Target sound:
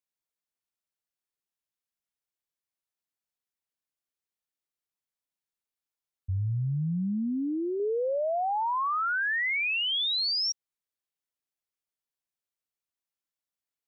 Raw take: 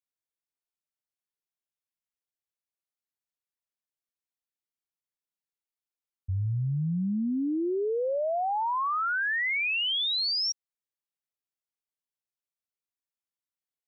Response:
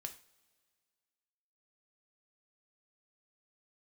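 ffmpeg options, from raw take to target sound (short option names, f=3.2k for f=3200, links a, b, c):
-filter_complex "[0:a]asettb=1/sr,asplit=3[a][b][c];[a]atrim=end=6.374[d];[b]atrim=start=6.37:end=7.8,asetpts=PTS-STARTPTS,afade=t=in:d=0.004:c=qsin,afade=t=out:st=1.426:d=0.004:c=qsin,equalizer=f=1.6k:w=0.34:g=-6.5[e];[c]atrim=start=7.796[f];[d][e]acrossfade=d=0.004:c1=hsin:c2=qsin[g];[g][f]acrossfade=d=0.004:c1=qsin:c2=hsin,asettb=1/sr,asplit=3[h][i][j];[h]atrim=end=9.404[k];[i]atrim=start=9.4:end=9.92,asetpts=PTS-STARTPTS,afade=t=in:d=0.004:c=qsin,afade=t=out:st=0.516:d=0.004:c=qsin,highpass=150,lowpass=4.9k[l];[j]atrim=start=9.916[m];[k][l]acrossfade=d=0.004:c1=hsin:c2=qsin[n];[n][m]acrossfade=d=0.004:c1=qsin:c2=hsin"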